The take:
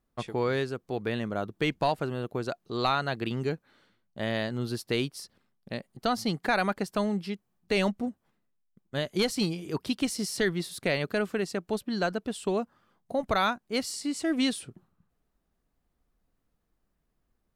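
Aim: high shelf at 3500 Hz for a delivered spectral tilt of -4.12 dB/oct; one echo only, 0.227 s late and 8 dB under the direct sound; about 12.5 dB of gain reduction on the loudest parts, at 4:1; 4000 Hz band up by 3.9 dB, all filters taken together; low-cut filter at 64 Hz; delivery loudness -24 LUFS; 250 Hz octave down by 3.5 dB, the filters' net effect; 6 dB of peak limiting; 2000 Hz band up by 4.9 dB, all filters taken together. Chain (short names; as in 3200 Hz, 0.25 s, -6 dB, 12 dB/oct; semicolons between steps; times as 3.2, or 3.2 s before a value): HPF 64 Hz; bell 250 Hz -4.5 dB; bell 2000 Hz +6.5 dB; high shelf 3500 Hz -6 dB; bell 4000 Hz +6.5 dB; compressor 4:1, threshold -35 dBFS; limiter -27 dBFS; echo 0.227 s -8 dB; gain +15 dB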